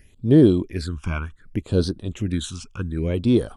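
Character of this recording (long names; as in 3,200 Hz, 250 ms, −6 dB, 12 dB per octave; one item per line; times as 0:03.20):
phaser sweep stages 8, 0.66 Hz, lowest notch 520–2,300 Hz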